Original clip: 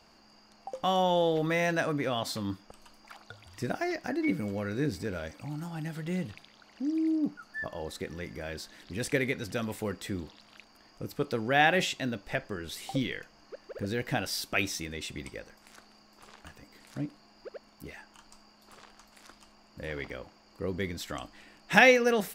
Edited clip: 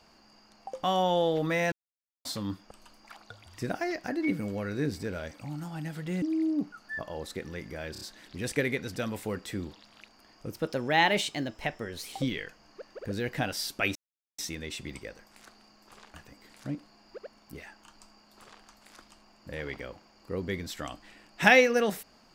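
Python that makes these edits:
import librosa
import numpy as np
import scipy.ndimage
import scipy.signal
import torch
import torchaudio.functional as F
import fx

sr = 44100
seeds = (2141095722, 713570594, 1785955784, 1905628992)

y = fx.edit(x, sr, fx.silence(start_s=1.72, length_s=0.53),
    fx.cut(start_s=6.22, length_s=0.65),
    fx.stutter(start_s=8.57, slice_s=0.03, count=4),
    fx.speed_span(start_s=11.08, length_s=1.78, speed=1.11),
    fx.insert_silence(at_s=14.69, length_s=0.43), tone=tone)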